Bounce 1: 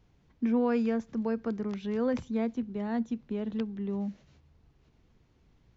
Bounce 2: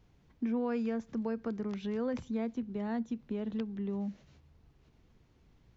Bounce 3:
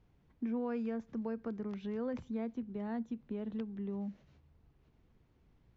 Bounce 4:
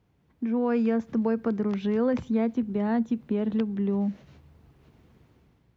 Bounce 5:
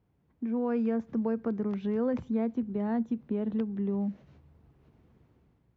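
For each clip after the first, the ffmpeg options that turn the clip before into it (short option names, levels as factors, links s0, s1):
-af "acompressor=threshold=0.02:ratio=2"
-af "highshelf=f=4600:g=-11.5,volume=0.668"
-af "highpass=72,dynaudnorm=f=120:g=9:m=3.16,volume=1.41"
-af "highshelf=f=2100:g=-9,volume=0.631"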